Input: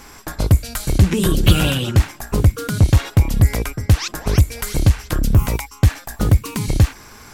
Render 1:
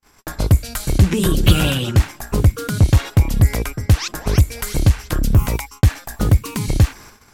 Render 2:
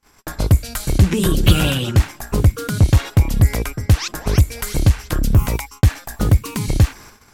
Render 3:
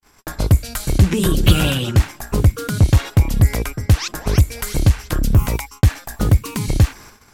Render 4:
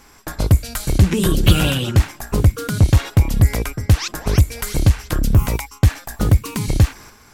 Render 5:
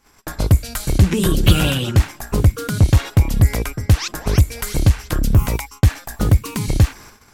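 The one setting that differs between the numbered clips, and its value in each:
noise gate, range: −47, −34, −59, −7, −21 decibels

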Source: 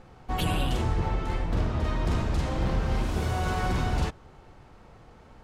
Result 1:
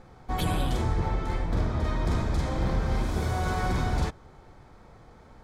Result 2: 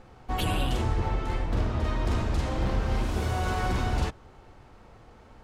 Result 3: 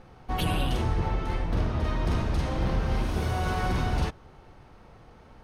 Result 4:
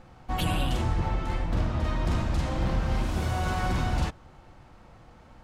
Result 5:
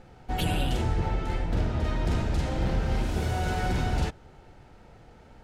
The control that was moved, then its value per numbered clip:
notch filter, centre frequency: 2,800, 160, 7,400, 420, 1,100 Hertz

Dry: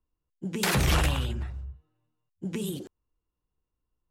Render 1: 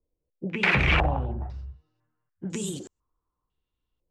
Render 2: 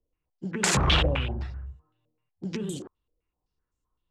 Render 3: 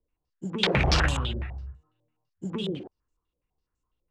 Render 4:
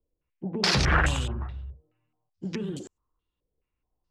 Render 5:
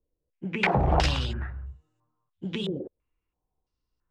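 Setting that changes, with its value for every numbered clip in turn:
low-pass on a step sequencer, speed: 2, 7.8, 12, 4.7, 3 Hertz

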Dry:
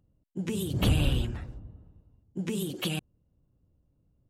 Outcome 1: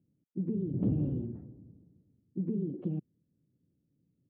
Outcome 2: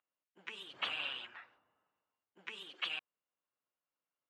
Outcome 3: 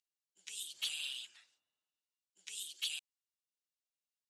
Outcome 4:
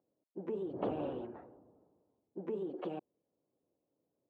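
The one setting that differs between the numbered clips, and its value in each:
flat-topped band-pass, frequency: 230, 1,800, 5,600, 580 Hertz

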